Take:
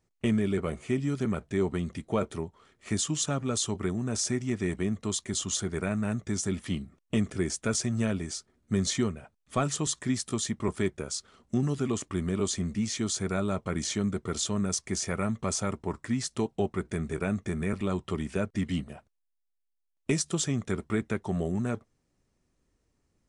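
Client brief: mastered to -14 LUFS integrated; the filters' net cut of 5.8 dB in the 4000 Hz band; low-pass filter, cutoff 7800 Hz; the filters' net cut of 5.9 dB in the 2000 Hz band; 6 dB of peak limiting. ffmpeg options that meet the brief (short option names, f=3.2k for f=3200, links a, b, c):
-af "lowpass=7.8k,equalizer=f=2k:t=o:g=-6.5,equalizer=f=4k:t=o:g=-5.5,volume=19dB,alimiter=limit=-2dB:level=0:latency=1"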